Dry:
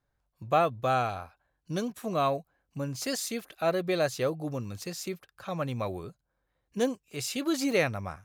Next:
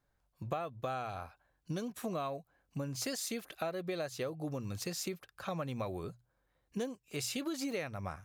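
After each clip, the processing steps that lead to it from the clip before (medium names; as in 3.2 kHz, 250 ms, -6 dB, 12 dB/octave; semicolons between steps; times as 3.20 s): hum notches 60/120 Hz; compression 12:1, threshold -35 dBFS, peak gain reduction 16.5 dB; trim +1 dB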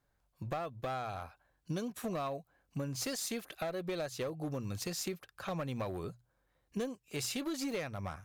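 one-sided clip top -34 dBFS; trim +1 dB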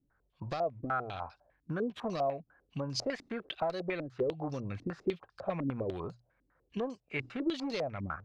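step-sequenced low-pass 10 Hz 280–4900 Hz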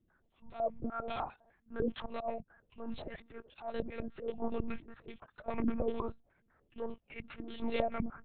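slow attack 189 ms; monotone LPC vocoder at 8 kHz 230 Hz; trim +2.5 dB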